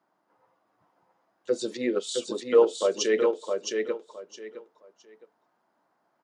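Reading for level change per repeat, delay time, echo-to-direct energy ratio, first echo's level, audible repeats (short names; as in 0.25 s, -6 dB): -13.0 dB, 0.664 s, -4.5 dB, -4.5 dB, 3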